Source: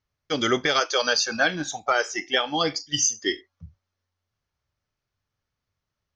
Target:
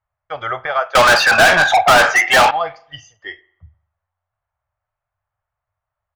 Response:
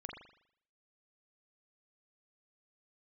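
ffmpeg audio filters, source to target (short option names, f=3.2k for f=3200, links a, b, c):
-filter_complex "[0:a]firequalizer=gain_entry='entry(110,0);entry(240,-25);entry(650,9);entry(5400,-28)':delay=0.05:min_phase=1,asettb=1/sr,asplit=3[a][b][c];[a]atrim=end=0.954[d];[b]atrim=start=0.95:end=2.51,asetpts=PTS-STARTPTS,afade=t=in:d=0.004:c=qsin,afade=t=out:st=1.556:d=0.004:c=qsin,asplit=2[e][f];[f]highpass=f=720:p=1,volume=37dB,asoftclip=type=tanh:threshold=-4dB[g];[e][g]amix=inputs=2:normalize=0,lowpass=f=6.2k:p=1,volume=-6dB[h];[c]atrim=start=2.506[i];[d][h]acrossfade=d=0.004:c1=hsin:c2=qsin[j];[j][i]acrossfade=d=0.004:c1=qsin:c2=hsin,asplit=2[k][l];[1:a]atrim=start_sample=2205[m];[l][m]afir=irnorm=-1:irlink=0,volume=-14.5dB[n];[k][n]amix=inputs=2:normalize=0"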